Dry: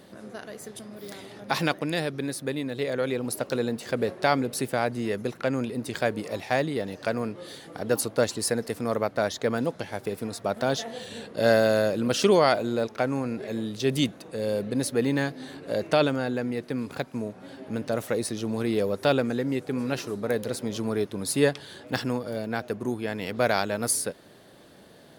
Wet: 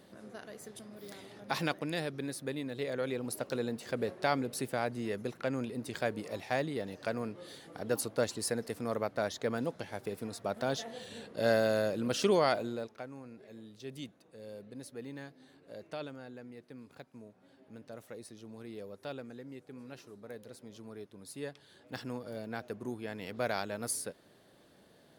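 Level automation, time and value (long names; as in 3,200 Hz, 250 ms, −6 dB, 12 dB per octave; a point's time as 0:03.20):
0:12.61 −7.5 dB
0:13.08 −19.5 dB
0:21.45 −19.5 dB
0:22.27 −10 dB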